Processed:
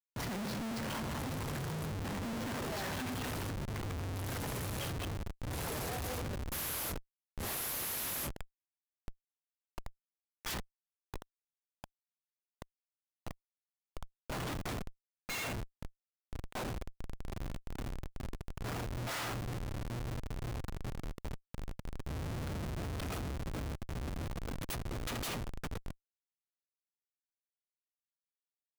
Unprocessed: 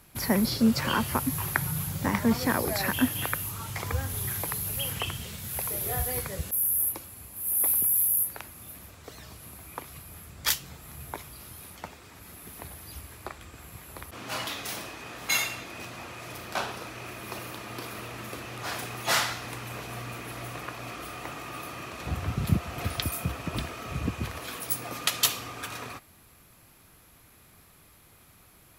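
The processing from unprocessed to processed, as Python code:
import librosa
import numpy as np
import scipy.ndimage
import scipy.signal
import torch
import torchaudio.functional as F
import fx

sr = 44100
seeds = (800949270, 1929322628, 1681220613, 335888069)

y = fx.comb_fb(x, sr, f0_hz=78.0, decay_s=1.5, harmonics='all', damping=0.0, mix_pct=30)
y = fx.echo_filtered(y, sr, ms=83, feedback_pct=52, hz=3300.0, wet_db=-9.0)
y = fx.schmitt(y, sr, flips_db=-32.5)
y = F.gain(torch.from_numpy(y), -3.5).numpy()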